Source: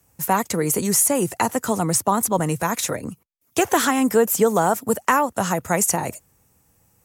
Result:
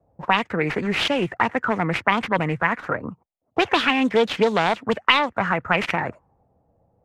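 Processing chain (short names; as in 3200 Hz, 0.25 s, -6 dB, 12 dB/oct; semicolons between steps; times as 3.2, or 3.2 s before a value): self-modulated delay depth 0.2 ms; envelope low-pass 640–3700 Hz up, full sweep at -14.5 dBFS; gain -1.5 dB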